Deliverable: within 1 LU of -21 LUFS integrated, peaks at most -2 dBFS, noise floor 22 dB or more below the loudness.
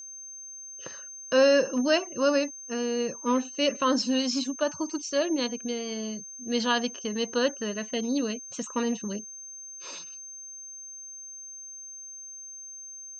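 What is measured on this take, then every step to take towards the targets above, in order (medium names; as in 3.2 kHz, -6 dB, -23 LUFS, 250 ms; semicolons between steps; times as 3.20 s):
steady tone 6.3 kHz; tone level -40 dBFS; loudness -27.5 LUFS; peak level -11.5 dBFS; loudness target -21.0 LUFS
-> band-stop 6.3 kHz, Q 30; trim +6.5 dB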